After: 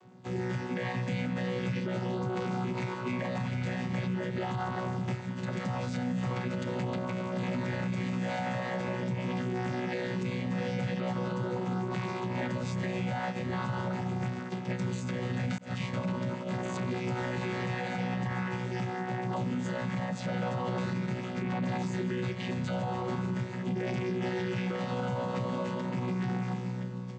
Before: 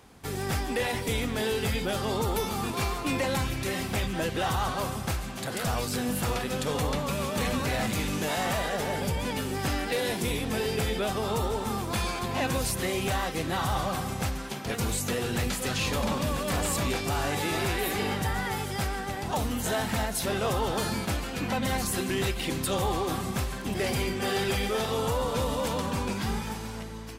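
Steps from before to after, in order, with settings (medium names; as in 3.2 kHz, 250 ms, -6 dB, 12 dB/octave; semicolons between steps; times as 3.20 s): vocoder on a held chord bare fifth, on B2; 15.58–16.66 s: expander -27 dBFS; dynamic bell 2 kHz, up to +6 dB, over -55 dBFS, Q 1.4; peak limiter -25.5 dBFS, peak gain reduction 9 dB; trim +1 dB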